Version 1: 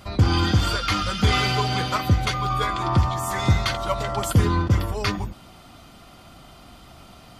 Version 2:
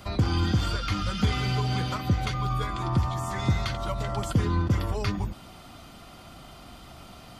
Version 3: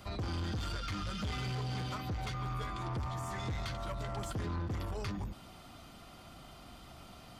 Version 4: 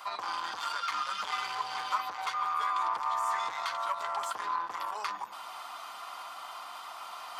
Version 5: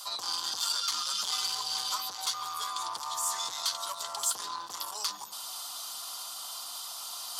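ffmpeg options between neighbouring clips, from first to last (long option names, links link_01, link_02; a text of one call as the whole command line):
ffmpeg -i in.wav -filter_complex "[0:a]acrossover=split=270|8000[link_01][link_02][link_03];[link_01]acompressor=threshold=-21dB:ratio=4[link_04];[link_02]acompressor=threshold=-32dB:ratio=4[link_05];[link_03]acompressor=threshold=-57dB:ratio=4[link_06];[link_04][link_05][link_06]amix=inputs=3:normalize=0" out.wav
ffmpeg -i in.wav -af "asoftclip=type=tanh:threshold=-27dB,volume=-6dB" out.wav
ffmpeg -i in.wav -af "areverse,acompressor=mode=upward:threshold=-42dB:ratio=2.5,areverse,highpass=frequency=1000:width_type=q:width=3.9,volume=4.5dB" out.wav
ffmpeg -i in.wav -af "lowshelf=frequency=440:gain=9.5,aexciter=amount=12.1:drive=5.1:freq=3400,volume=-7.5dB" -ar 44100 -c:a libmp3lame -b:a 112k out.mp3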